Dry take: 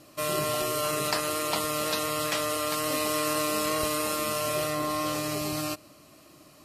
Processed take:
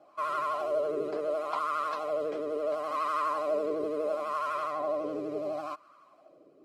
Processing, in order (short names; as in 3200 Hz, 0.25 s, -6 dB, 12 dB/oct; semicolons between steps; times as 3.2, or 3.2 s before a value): wah 0.72 Hz 400–1200 Hz, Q 4.2; notch comb 920 Hz; vibrato 12 Hz 73 cents; gain +7 dB